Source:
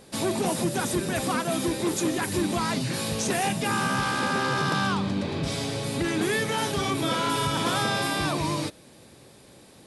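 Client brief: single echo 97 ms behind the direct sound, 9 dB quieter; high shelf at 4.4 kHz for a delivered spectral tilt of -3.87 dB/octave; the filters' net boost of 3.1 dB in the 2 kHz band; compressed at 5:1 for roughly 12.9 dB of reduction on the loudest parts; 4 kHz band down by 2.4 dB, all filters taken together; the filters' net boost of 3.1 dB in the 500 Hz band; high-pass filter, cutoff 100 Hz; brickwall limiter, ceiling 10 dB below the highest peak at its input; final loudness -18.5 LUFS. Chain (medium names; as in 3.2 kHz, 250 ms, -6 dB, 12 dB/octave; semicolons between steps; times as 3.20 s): high-pass 100 Hz; peaking EQ 500 Hz +4 dB; peaking EQ 2 kHz +4.5 dB; peaking EQ 4 kHz -7 dB; treble shelf 4.4 kHz +4.5 dB; compression 5:1, threshold -35 dBFS; peak limiter -33 dBFS; delay 97 ms -9 dB; trim +22.5 dB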